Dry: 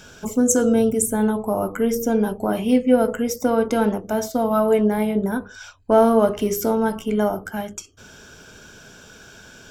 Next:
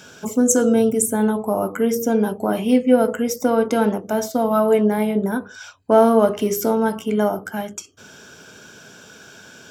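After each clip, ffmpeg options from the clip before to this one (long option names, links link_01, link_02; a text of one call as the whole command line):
ffmpeg -i in.wav -af "highpass=130,volume=1.5dB" out.wav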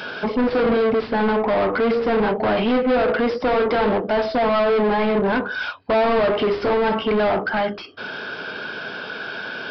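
ffmpeg -i in.wav -filter_complex "[0:a]asplit=2[link_01][link_02];[link_02]highpass=frequency=720:poles=1,volume=34dB,asoftclip=type=tanh:threshold=-2dB[link_03];[link_01][link_03]amix=inputs=2:normalize=0,lowpass=frequency=1900:poles=1,volume=-6dB,aresample=11025,aresample=44100,volume=-9dB" out.wav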